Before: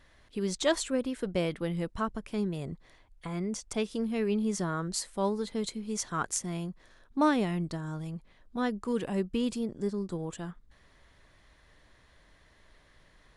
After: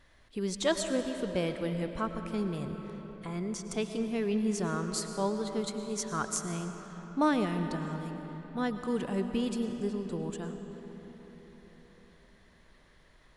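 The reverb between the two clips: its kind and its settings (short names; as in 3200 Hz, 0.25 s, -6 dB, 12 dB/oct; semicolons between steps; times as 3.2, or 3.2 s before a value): digital reverb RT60 4.8 s, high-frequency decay 0.6×, pre-delay 70 ms, DRR 6.5 dB; gain -1.5 dB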